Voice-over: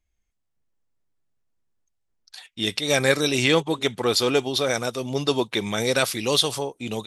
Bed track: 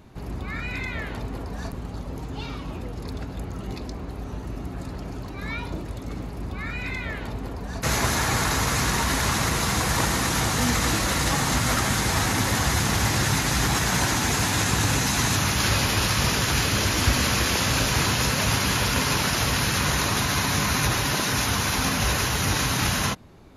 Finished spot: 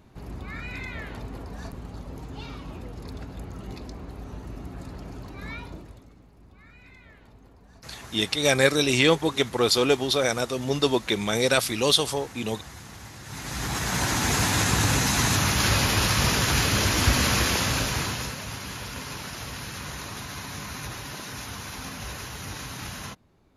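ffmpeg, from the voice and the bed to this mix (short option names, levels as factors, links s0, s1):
-filter_complex "[0:a]adelay=5550,volume=1[s0];[1:a]volume=5.96,afade=t=out:st=5.47:d=0.65:silence=0.16788,afade=t=in:st=13.24:d=1.13:silence=0.0944061,afade=t=out:st=17.39:d=1.02:silence=0.223872[s1];[s0][s1]amix=inputs=2:normalize=0"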